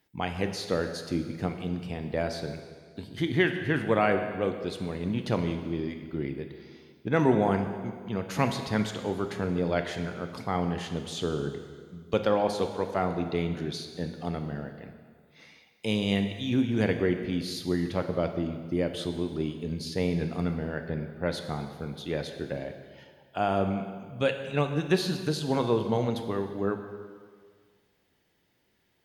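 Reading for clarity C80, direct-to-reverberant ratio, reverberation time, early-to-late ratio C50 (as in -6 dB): 9.0 dB, 6.0 dB, 1.8 s, 7.5 dB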